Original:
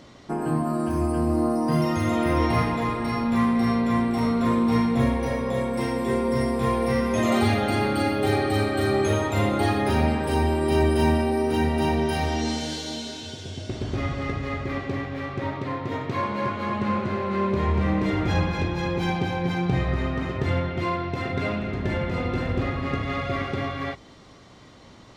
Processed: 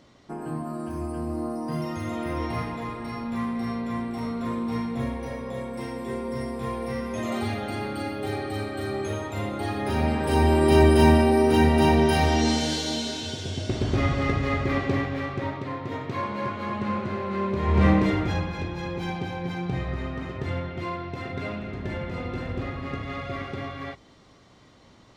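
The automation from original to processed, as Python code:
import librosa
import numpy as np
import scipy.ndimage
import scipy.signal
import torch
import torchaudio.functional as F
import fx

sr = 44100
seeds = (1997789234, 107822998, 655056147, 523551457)

y = fx.gain(x, sr, db=fx.line((9.62, -7.5), (10.57, 4.0), (14.97, 4.0), (15.65, -3.0), (17.62, -3.0), (17.85, 6.0), (18.43, -5.5)))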